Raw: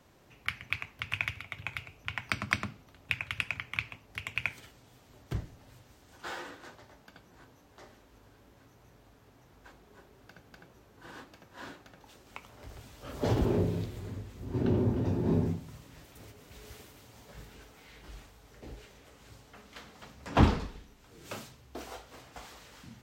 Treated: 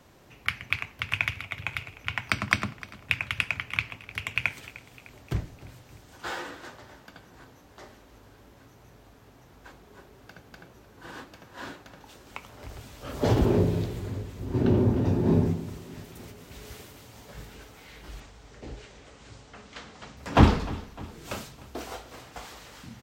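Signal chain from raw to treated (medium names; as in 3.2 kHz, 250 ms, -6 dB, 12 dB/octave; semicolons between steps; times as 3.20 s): 18.20–20.17 s: steep low-pass 8.2 kHz 36 dB/octave; feedback delay 303 ms, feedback 54%, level -18.5 dB; trim +5.5 dB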